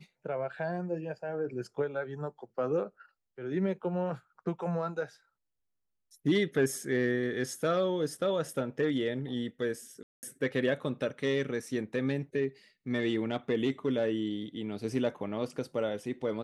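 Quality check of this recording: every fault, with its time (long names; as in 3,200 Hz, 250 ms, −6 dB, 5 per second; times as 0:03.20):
0:10.03–0:10.23: drop-out 199 ms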